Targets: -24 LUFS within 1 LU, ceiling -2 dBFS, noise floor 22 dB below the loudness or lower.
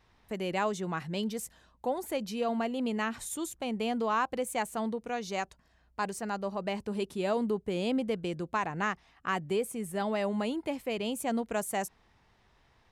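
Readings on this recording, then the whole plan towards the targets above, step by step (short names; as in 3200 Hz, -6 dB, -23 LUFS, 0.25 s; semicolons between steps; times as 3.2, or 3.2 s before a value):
loudness -33.0 LUFS; peak -18.5 dBFS; loudness target -24.0 LUFS
-> gain +9 dB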